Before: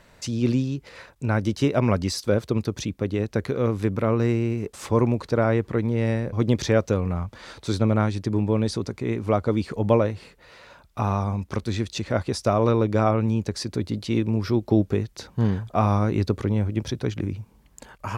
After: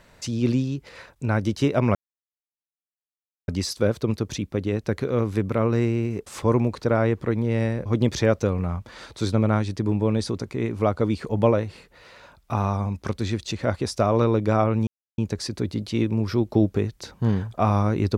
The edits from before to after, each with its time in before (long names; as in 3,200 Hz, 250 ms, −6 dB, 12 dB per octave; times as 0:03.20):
0:01.95: splice in silence 1.53 s
0:13.34: splice in silence 0.31 s